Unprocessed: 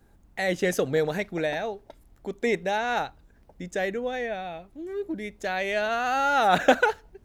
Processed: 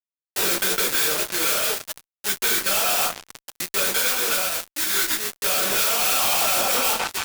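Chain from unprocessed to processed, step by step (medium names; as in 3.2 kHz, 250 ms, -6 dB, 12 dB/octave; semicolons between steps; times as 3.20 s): LPC vocoder at 8 kHz pitch kept; band-stop 700 Hz, Q 19; sample-rate reducer 2.3 kHz, jitter 20%; formant shift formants -3 st; high-pass 310 Hz 6 dB/octave; repeats whose band climbs or falls 170 ms, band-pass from 750 Hz, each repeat 0.7 oct, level -12 dB; reverberation RT60 0.35 s, pre-delay 5 ms, DRR 3.5 dB; peak limiter -16 dBFS, peak gain reduction 12.5 dB; tilt EQ +4.5 dB/octave; fuzz box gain 33 dB, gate -34 dBFS; compression 3:1, threshold -25 dBFS, peak gain reduction 8.5 dB; trim +4 dB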